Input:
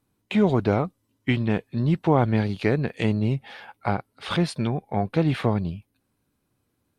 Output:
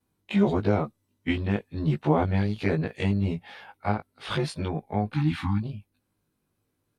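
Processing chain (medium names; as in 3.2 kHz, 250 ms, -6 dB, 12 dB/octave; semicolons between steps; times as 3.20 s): short-time spectra conjugated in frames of 39 ms; spectral selection erased 5.14–5.62 s, 330–760 Hz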